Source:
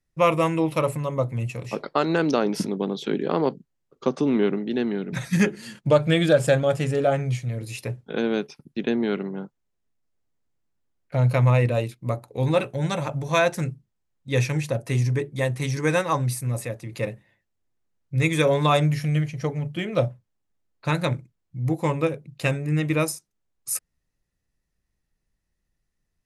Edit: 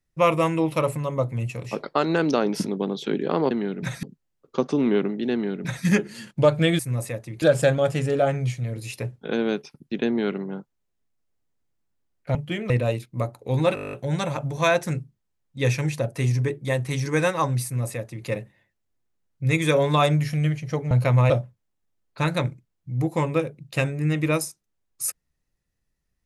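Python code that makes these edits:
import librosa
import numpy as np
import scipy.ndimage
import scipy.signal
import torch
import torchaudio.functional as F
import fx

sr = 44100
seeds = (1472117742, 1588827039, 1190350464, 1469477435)

y = fx.edit(x, sr, fx.duplicate(start_s=4.81, length_s=0.52, to_s=3.51),
    fx.swap(start_s=11.2, length_s=0.39, other_s=19.62, other_length_s=0.35),
    fx.stutter(start_s=12.64, slice_s=0.02, count=10),
    fx.duplicate(start_s=16.35, length_s=0.63, to_s=6.27), tone=tone)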